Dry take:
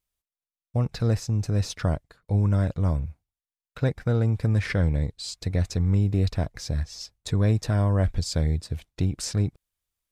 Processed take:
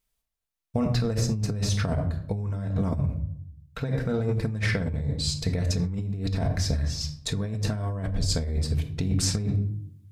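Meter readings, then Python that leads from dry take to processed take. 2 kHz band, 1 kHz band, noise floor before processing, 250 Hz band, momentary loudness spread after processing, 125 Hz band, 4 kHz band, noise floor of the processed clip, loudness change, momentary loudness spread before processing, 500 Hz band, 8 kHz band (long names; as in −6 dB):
+1.5 dB, −1.5 dB, below −85 dBFS, −0.5 dB, 5 LU, −2.5 dB, +4.5 dB, −82 dBFS, −2.0 dB, 8 LU, −1.0 dB, +4.0 dB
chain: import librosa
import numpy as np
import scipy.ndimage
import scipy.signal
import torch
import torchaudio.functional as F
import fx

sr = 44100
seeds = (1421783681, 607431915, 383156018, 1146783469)

y = fx.room_shoebox(x, sr, seeds[0], volume_m3=1000.0, walls='furnished', distance_m=1.6)
y = fx.over_compress(y, sr, threshold_db=-26.0, ratio=-1.0)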